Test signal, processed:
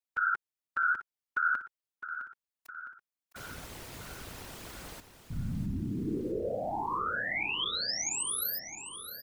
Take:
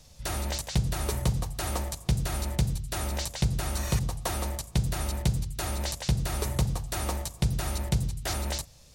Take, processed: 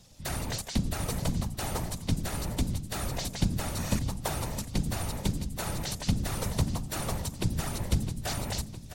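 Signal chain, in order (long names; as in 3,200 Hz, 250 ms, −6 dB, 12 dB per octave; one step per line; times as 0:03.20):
random phases in short frames
on a send: repeating echo 660 ms, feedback 56%, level −11.5 dB
on the sum: level −2 dB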